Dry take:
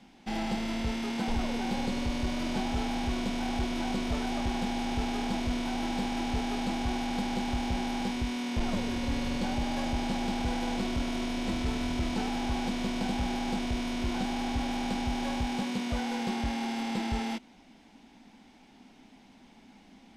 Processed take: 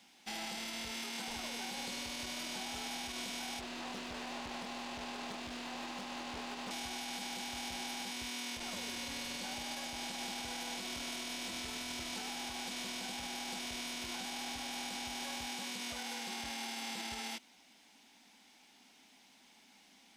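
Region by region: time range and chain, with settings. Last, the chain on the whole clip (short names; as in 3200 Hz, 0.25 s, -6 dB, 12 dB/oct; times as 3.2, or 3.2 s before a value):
3.6–6.71 LPF 2100 Hz 6 dB/oct + Doppler distortion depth 0.56 ms
whole clip: tilt +4 dB/oct; limiter -25.5 dBFS; gain -6.5 dB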